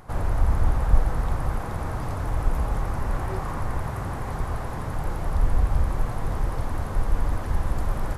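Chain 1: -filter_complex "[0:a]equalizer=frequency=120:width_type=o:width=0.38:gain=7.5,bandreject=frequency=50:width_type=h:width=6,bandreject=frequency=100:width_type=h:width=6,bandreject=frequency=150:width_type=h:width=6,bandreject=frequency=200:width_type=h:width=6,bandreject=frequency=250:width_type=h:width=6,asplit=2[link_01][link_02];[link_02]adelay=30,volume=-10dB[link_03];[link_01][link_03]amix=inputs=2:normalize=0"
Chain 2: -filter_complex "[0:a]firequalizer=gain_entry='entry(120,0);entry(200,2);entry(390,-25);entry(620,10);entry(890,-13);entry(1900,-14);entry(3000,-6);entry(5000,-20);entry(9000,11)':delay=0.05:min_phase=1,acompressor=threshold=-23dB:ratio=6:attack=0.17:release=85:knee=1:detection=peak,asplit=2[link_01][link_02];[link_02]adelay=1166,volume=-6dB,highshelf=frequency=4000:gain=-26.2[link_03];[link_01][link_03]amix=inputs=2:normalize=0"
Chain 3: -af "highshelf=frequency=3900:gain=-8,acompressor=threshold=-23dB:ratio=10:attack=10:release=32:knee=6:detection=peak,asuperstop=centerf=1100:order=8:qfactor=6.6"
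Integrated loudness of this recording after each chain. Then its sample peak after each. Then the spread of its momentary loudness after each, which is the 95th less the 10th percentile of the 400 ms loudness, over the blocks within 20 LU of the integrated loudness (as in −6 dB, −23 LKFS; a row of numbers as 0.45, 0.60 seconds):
−27.5, −32.0, −31.5 LKFS; −5.5, −18.0, −15.0 dBFS; 6, 1, 2 LU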